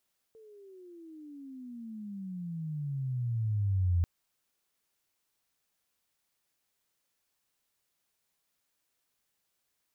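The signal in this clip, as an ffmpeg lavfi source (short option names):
-f lavfi -i "aevalsrc='pow(10,(-23+28.5*(t/3.69-1))/20)*sin(2*PI*450*3.69/(-29*log(2)/12)*(exp(-29*log(2)/12*t/3.69)-1))':d=3.69:s=44100"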